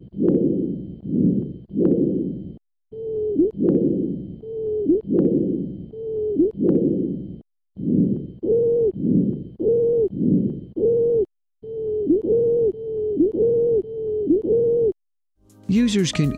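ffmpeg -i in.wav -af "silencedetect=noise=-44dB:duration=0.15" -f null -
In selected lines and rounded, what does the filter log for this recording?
silence_start: 2.57
silence_end: 2.92 | silence_duration: 0.34
silence_start: 7.41
silence_end: 7.77 | silence_duration: 0.36
silence_start: 11.25
silence_end: 11.63 | silence_duration: 0.38
silence_start: 14.92
silence_end: 15.50 | silence_duration: 0.58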